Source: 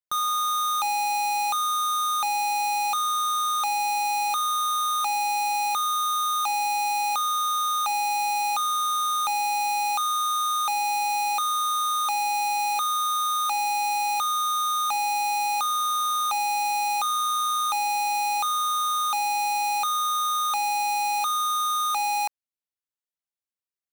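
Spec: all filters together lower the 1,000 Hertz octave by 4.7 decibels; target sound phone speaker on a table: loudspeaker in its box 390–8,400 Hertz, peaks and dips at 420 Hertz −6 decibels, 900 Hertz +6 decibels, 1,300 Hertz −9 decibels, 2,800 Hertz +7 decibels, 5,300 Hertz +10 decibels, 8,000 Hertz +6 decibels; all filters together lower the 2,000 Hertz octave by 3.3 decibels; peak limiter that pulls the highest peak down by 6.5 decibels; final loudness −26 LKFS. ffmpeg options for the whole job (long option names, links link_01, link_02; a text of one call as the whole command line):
ffmpeg -i in.wav -af "equalizer=frequency=1000:width_type=o:gain=-6,equalizer=frequency=2000:width_type=o:gain=-8.5,alimiter=level_in=6.5dB:limit=-24dB:level=0:latency=1,volume=-6.5dB,highpass=frequency=390:width=0.5412,highpass=frequency=390:width=1.3066,equalizer=frequency=420:width_type=q:width=4:gain=-6,equalizer=frequency=900:width_type=q:width=4:gain=6,equalizer=frequency=1300:width_type=q:width=4:gain=-9,equalizer=frequency=2800:width_type=q:width=4:gain=7,equalizer=frequency=5300:width_type=q:width=4:gain=10,equalizer=frequency=8000:width_type=q:width=4:gain=6,lowpass=frequency=8400:width=0.5412,lowpass=frequency=8400:width=1.3066,volume=6.5dB" out.wav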